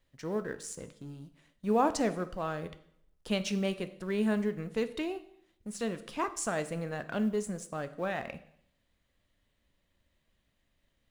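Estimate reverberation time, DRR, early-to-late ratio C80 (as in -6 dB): 0.70 s, 10.5 dB, 17.5 dB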